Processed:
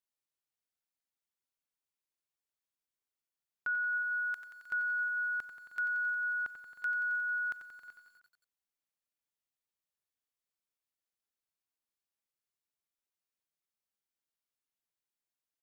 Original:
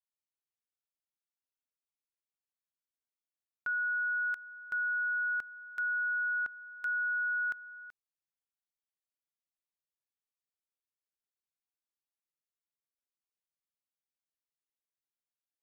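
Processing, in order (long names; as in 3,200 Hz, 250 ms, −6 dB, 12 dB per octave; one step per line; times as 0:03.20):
multi-tap delay 96/312 ms −17.5/−17.5 dB
feedback echo at a low word length 90 ms, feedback 80%, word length 11 bits, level −10.5 dB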